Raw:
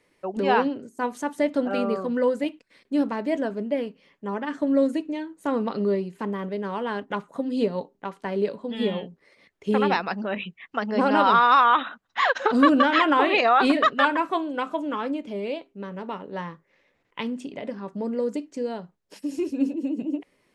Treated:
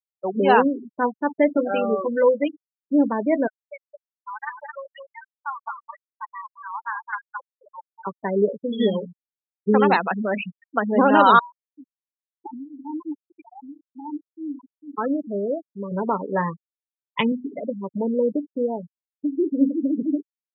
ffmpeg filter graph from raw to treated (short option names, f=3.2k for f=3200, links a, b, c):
-filter_complex "[0:a]asettb=1/sr,asplit=3[a][b][c];[a]atrim=end=1.574[d];[b]atrim=start=1.57:end=2.48,asetpts=PTS-STARTPTS,afade=t=in:d=0.004:c=qsin,afade=t=out:st=0.906:d=0.004:c=qsin,lowshelf=f=220:g=-10.5,asplit=2[e][f];[f]adelay=14,volume=-7.5dB[g];[e][g]amix=inputs=2:normalize=0,atrim=end_sample=40131[h];[c]atrim=start=2.476[i];[d][h]acrossfade=d=0.004:c1=hsin:c2=qsin[j];[j][i]acrossfade=d=0.004:c1=qsin:c2=hsin,asettb=1/sr,asplit=3[k][l][m];[k]atrim=end=3.474[n];[l]atrim=start=3.47:end=8.07,asetpts=PTS-STARTPTS,afade=t=in:d=0.004:c=qsin,afade=t=out:st=4.596:d=0.004:c=qsin,highpass=f=940:w=0.5412,highpass=f=940:w=1.3066,aecho=1:1:217:0.596,atrim=end_sample=202860[o];[m]atrim=start=8.066[p];[n][o]acrossfade=d=0.004:c1=hsin:c2=qsin[q];[q][p]acrossfade=d=0.004:c1=qsin:c2=hsin,asettb=1/sr,asplit=3[r][s][t];[r]atrim=end=11.394[u];[s]atrim=start=11.39:end=14.98,asetpts=PTS-STARTPTS,afade=t=in:d=0.004:c=qsin,afade=t=out:st=3.586:d=0.004:c=qsin,acompressor=threshold=-22dB:ratio=8:attack=3.2:release=140:knee=1:detection=peak,tremolo=f=1.9:d=0.84,asplit=3[v][w][x];[v]bandpass=f=300:t=q:w=8,volume=0dB[y];[w]bandpass=f=870:t=q:w=8,volume=-6dB[z];[x]bandpass=f=2.24k:t=q:w=8,volume=-9dB[aa];[y][z][aa]amix=inputs=3:normalize=0[ab];[t]atrim=start=14.976[ac];[u][ab]acrossfade=d=0.004:c1=hsin:c2=qsin[ad];[ad][ac]acrossfade=d=0.004:c1=qsin:c2=hsin,asettb=1/sr,asplit=3[ae][af][ag];[ae]atrim=end=15.914[ah];[af]atrim=start=15.91:end=17.32,asetpts=PTS-STARTPTS,afade=t=in:d=0.004:c=qsin,afade=t=out:st=1.406:d=0.004:c=qsin,asubboost=boost=11.5:cutoff=110,acontrast=40[ai];[ag]atrim=start=17.316[aj];[ah][ai]acrossfade=d=0.004:c1=hsin:c2=qsin[ak];[ak][aj]acrossfade=d=0.004:c1=qsin:c2=hsin,afftfilt=real='re*gte(hypot(re,im),0.0631)':imag='im*gte(hypot(re,im),0.0631)':win_size=1024:overlap=0.75,highpass=110,volume=5dB"